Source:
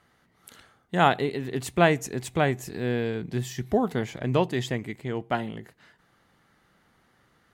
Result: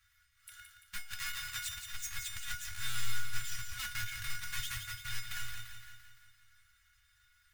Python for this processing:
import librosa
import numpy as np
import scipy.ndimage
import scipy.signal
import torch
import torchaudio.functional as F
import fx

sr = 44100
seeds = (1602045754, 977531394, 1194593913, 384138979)

p1 = fx.halfwave_hold(x, sr)
p2 = scipy.signal.sosfilt(scipy.signal.cheby1(3, 1.0, [100.0, 1500.0], 'bandstop', fs=sr, output='sos'), p1)
p3 = p2 + 0.79 * np.pad(p2, (int(3.6 * sr / 1000.0), 0))[:len(p2)]
p4 = fx.over_compress(p3, sr, threshold_db=-29.0, ratio=-0.5)
p5 = fx.comb_fb(p4, sr, f0_hz=720.0, decay_s=0.3, harmonics='all', damping=0.0, mix_pct=90)
p6 = p5 + fx.echo_feedback(p5, sr, ms=171, feedback_pct=56, wet_db=-7.5, dry=0)
y = p6 * 10.0 ** (5.0 / 20.0)